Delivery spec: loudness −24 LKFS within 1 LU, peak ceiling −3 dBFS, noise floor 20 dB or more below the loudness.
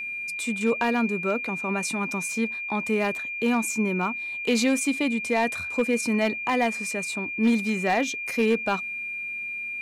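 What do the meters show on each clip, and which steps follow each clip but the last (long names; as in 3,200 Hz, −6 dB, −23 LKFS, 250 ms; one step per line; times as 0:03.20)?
share of clipped samples 0.4%; peaks flattened at −15.0 dBFS; interfering tone 2,400 Hz; level of the tone −30 dBFS; integrated loudness −25.5 LKFS; sample peak −15.0 dBFS; target loudness −24.0 LKFS
→ clipped peaks rebuilt −15 dBFS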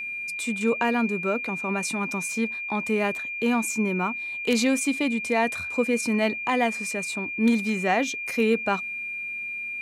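share of clipped samples 0.0%; interfering tone 2,400 Hz; level of the tone −30 dBFS
→ notch filter 2,400 Hz, Q 30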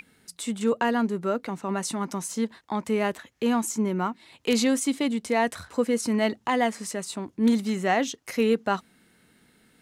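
interfering tone none found; integrated loudness −26.5 LKFS; sample peak −6.5 dBFS; target loudness −24.0 LKFS
→ level +2.5 dB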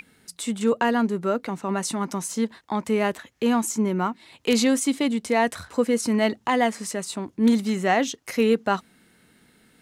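integrated loudness −24.0 LKFS; sample peak −4.5 dBFS; background noise floor −60 dBFS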